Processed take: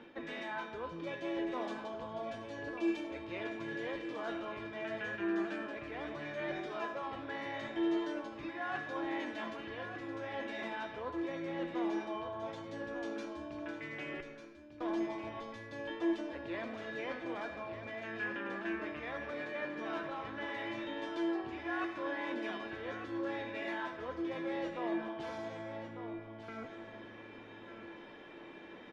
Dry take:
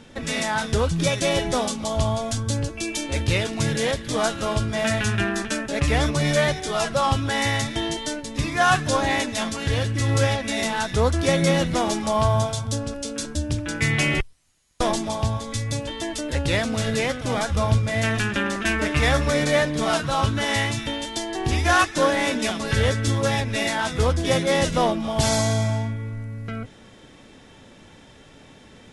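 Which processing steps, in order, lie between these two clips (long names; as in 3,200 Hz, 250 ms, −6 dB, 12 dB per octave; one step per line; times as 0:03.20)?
parametric band 9,000 Hz −15 dB 0.71 octaves
reversed playback
downward compressor 8 to 1, threshold −35 dBFS, peak gain reduction 21 dB
reversed playback
three-way crossover with the lows and the highs turned down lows −18 dB, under 230 Hz, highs −20 dB, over 3,000 Hz
tuned comb filter 340 Hz, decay 0.46 s, harmonics odd, mix 90%
single-tap delay 1,197 ms −9 dB
on a send at −8.5 dB: convolution reverb RT60 1.2 s, pre-delay 30 ms
on the sum: level +16 dB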